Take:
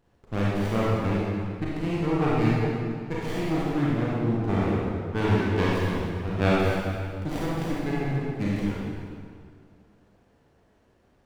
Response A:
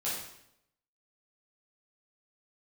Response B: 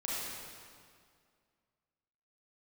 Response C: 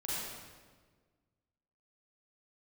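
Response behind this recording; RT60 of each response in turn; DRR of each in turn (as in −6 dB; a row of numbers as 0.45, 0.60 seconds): B; 0.75, 2.1, 1.5 seconds; −9.0, −7.0, −8.5 decibels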